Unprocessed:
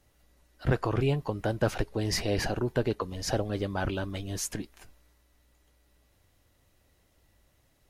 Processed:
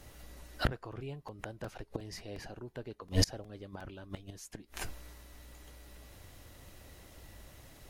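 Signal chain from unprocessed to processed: inverted gate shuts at -27 dBFS, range -29 dB; crackling interface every 0.36 s, samples 128, repeat, from 0.56 s; trim +13 dB

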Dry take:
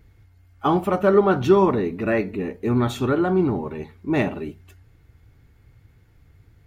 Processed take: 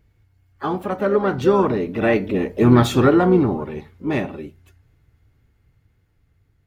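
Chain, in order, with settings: Doppler pass-by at 2.76 s, 7 m/s, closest 3.8 m; harmony voices +5 st -12 dB; trim +7.5 dB

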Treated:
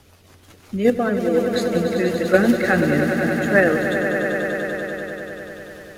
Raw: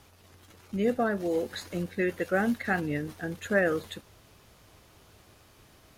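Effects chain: in parallel at -0.5 dB: level held to a coarse grid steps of 24 dB; 2.34–3.04 s: on the sum: waveshaping leveller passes 1; rotary cabinet horn 5.5 Hz, later 0.85 Hz, at 2.91 s; on a send: echo with a slow build-up 97 ms, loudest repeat 5, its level -10 dB; on the sum: trim +7 dB

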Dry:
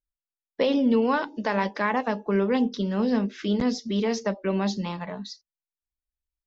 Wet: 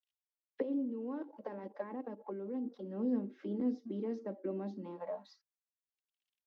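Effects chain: companding laws mixed up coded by mu; 0.62–2.90 s: level held to a coarse grid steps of 14 dB; auto-wah 320–3000 Hz, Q 3.9, down, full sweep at -25.5 dBFS; bass shelf 380 Hz -6 dB; comb 3.7 ms, depth 38%

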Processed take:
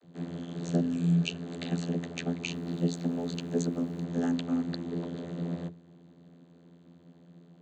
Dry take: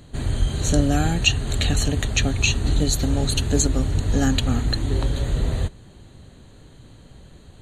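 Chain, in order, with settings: vocoder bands 32, saw 85.4 Hz; 0.83–1.37 s: spectral replace 330–2300 Hz after; 2.50–4.03 s: added noise pink -63 dBFS; trim -6 dB

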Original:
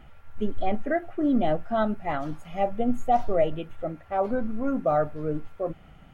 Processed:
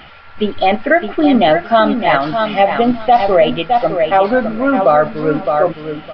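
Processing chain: tilt EQ +3.5 dB/octave; feedback delay 612 ms, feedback 20%, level -8 dB; resampled via 11.025 kHz; loudness maximiser +19 dB; trim -1 dB

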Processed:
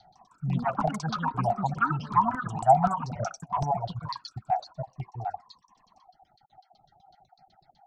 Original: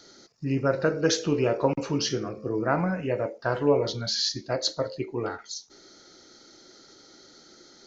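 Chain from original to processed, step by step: random holes in the spectrogram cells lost 21%; LFO low-pass saw down 8 Hz 390–4300 Hz; FFT filter 160 Hz 0 dB, 280 Hz -25 dB, 520 Hz -29 dB, 750 Hz +14 dB, 1.1 kHz -20 dB, 4.5 kHz -14 dB, 6.9 kHz -19 dB; 3.13–3.64 s: compressor with a negative ratio -32 dBFS, ratio -0.5; reverb removal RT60 1.6 s; ever faster or slower copies 156 ms, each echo +5 st, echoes 2; trim +2.5 dB

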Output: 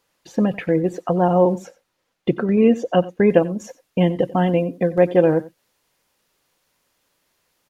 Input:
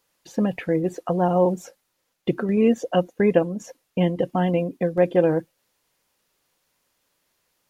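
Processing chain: treble shelf 6.5 kHz -7 dB, from 1.58 s -12 dB, from 3.30 s -2.5 dB; delay 91 ms -19 dB; trim +3.5 dB

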